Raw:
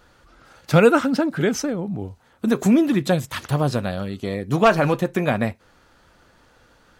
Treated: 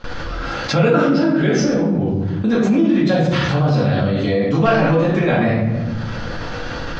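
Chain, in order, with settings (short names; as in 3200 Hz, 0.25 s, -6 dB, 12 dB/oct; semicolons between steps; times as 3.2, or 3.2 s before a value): steep low-pass 5900 Hz 36 dB/oct; shoebox room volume 200 m³, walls mixed, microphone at 2.2 m; gate with hold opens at -39 dBFS; fast leveller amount 70%; gain -11 dB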